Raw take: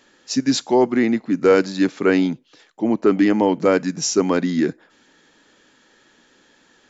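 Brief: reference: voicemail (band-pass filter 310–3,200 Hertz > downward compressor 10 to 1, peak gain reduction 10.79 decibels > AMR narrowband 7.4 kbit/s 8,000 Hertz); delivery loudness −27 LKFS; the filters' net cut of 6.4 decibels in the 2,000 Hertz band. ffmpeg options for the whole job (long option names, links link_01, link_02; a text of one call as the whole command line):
ffmpeg -i in.wav -af "highpass=310,lowpass=3200,equalizer=frequency=2000:width_type=o:gain=-8,acompressor=threshold=-21dB:ratio=10,volume=1dB" -ar 8000 -c:a libopencore_amrnb -b:a 7400 out.amr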